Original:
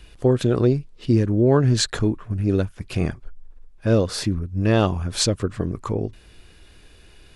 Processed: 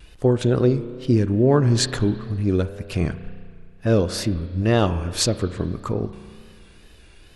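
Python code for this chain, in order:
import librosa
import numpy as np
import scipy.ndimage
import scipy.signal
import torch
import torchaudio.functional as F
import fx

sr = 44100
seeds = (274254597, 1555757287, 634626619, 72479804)

y = fx.rev_spring(x, sr, rt60_s=2.0, pass_ms=(33,), chirp_ms=35, drr_db=12.0)
y = fx.wow_flutter(y, sr, seeds[0], rate_hz=2.1, depth_cents=77.0)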